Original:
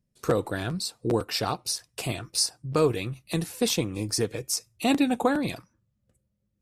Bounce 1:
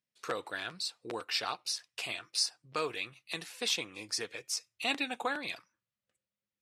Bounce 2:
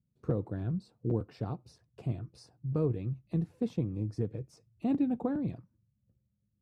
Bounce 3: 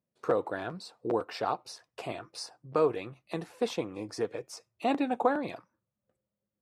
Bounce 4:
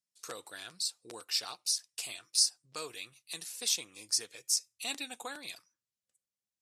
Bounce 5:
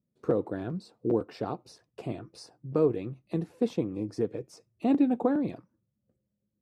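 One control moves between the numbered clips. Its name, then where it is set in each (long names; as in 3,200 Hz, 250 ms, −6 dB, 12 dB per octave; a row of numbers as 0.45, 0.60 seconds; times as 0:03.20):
resonant band-pass, frequency: 2,600, 120, 790, 6,700, 310 Hertz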